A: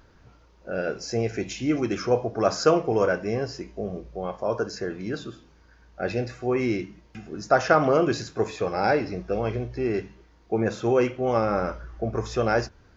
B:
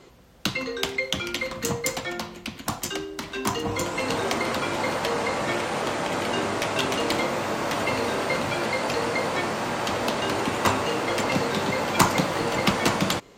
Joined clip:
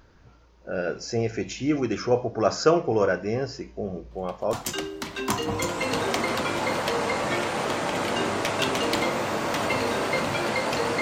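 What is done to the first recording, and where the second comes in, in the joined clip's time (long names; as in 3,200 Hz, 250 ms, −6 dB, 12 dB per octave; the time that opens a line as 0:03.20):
A
0:04.11: mix in B from 0:02.28 0.42 s −18 dB
0:04.53: continue with B from 0:02.70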